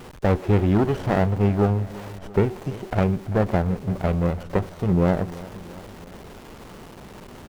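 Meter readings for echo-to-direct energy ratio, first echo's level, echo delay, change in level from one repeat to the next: -16.5 dB, -18.0 dB, 0.338 s, -4.5 dB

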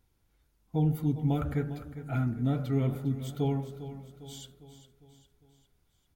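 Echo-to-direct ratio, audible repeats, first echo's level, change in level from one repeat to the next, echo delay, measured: -11.5 dB, 4, -13.0 dB, -6.0 dB, 0.403 s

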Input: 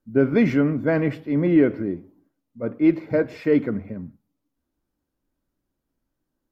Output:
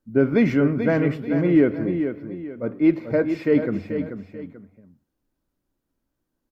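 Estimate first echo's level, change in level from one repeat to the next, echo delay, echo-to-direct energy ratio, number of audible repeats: -8.5 dB, -9.5 dB, 0.437 s, -8.0 dB, 2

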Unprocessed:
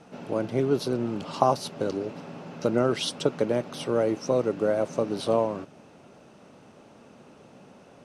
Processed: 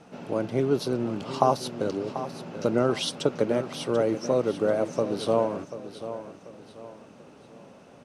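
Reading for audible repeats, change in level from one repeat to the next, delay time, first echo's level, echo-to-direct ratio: 3, -9.0 dB, 0.738 s, -12.0 dB, -11.5 dB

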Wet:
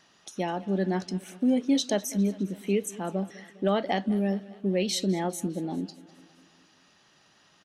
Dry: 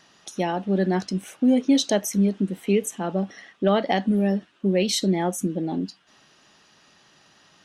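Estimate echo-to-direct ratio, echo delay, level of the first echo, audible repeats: -18.0 dB, 0.203 s, -20.0 dB, 4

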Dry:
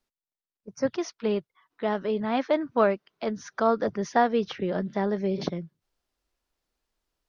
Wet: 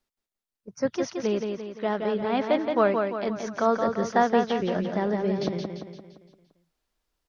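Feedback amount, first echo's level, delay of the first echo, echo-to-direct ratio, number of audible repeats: 49%, -5.0 dB, 0.172 s, -4.0 dB, 5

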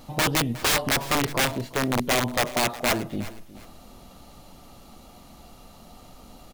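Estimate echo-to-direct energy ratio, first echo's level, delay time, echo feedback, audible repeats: -17.0 dB, -17.5 dB, 0.362 s, 26%, 2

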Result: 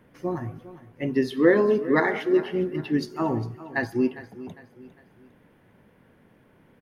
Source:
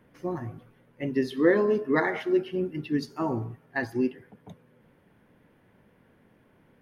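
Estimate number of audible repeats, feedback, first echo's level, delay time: 3, 39%, -16.0 dB, 0.404 s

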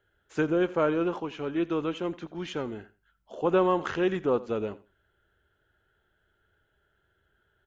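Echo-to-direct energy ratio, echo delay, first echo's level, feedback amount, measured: -19.0 dB, 86 ms, -19.0 dB, 19%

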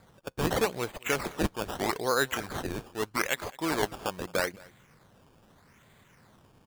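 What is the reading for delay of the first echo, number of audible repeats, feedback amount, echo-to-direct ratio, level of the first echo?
0.217 s, 1, no steady repeat, -23.5 dB, -23.5 dB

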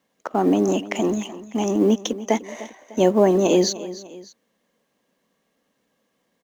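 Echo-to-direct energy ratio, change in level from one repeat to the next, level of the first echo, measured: -15.0 dB, -6.5 dB, -16.0 dB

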